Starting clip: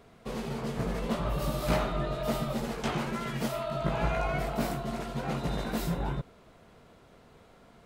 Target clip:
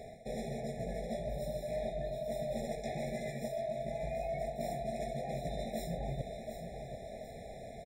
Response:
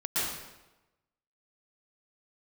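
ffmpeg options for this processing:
-af "equalizer=frequency=315:width_type=o:width=0.33:gain=-10,equalizer=frequency=630:width_type=o:width=0.33:gain=12,equalizer=frequency=5000:width_type=o:width=0.33:gain=4,equalizer=frequency=8000:width_type=o:width=0.33:gain=10,areverse,acompressor=threshold=-42dB:ratio=10,areverse,aecho=1:1:735|1470|2205|2940|3675:0.355|0.145|0.0596|0.0245|0.01,afftfilt=real='re*eq(mod(floor(b*sr/1024/840),2),0)':imag='im*eq(mod(floor(b*sr/1024/840),2),0)':win_size=1024:overlap=0.75,volume=6.5dB"

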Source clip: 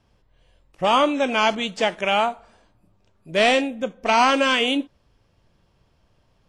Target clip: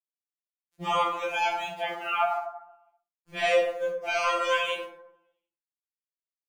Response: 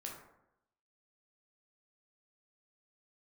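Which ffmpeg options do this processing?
-filter_complex "[0:a]asettb=1/sr,asplit=3[link_01][link_02][link_03];[link_01]atrim=end=1.734[link_04];[link_02]atrim=start=1.73:end=3.38,asetpts=PTS-STARTPTS,afade=type=in:duration=0.004:curve=qsin,afade=type=out:start_time=1.646:duration=0.004:curve=qsin,highpass=220,equalizer=frequency=250:width_type=q:width=4:gain=-6,equalizer=frequency=420:width_type=q:width=4:gain=-6,equalizer=frequency=660:width_type=q:width=4:gain=6,equalizer=frequency=1200:width_type=q:width=4:gain=7,equalizer=frequency=1800:width_type=q:width=4:gain=-4,lowpass=frequency=3400:width=0.5412,lowpass=frequency=3400:width=1.3066[link_05];[link_03]atrim=start=3.376[link_06];[link_04][link_05]acrossfade=duration=0.004:curve1=hsin:curve2=qsin[link_07];[link_07][link_06]acrossfade=duration=0.004:curve1=qsin:curve2=hsin,aeval=exprs='val(0)*gte(abs(val(0)),0.0126)':channel_layout=same[link_08];[1:a]atrim=start_sample=2205[link_09];[link_08][link_09]afir=irnorm=-1:irlink=0,afftfilt=real='re*2.83*eq(mod(b,8),0)':imag='im*2.83*eq(mod(b,8),0)':win_size=2048:overlap=0.75,volume=-3dB"

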